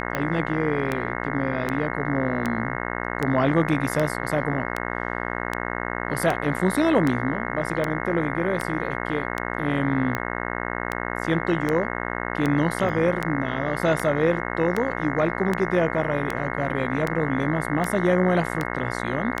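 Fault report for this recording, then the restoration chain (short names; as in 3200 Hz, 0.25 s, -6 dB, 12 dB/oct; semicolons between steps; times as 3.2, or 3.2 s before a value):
buzz 60 Hz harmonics 36 -29 dBFS
tick 78 rpm -11 dBFS
12.89 gap 2 ms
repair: de-click; de-hum 60 Hz, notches 36; interpolate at 12.89, 2 ms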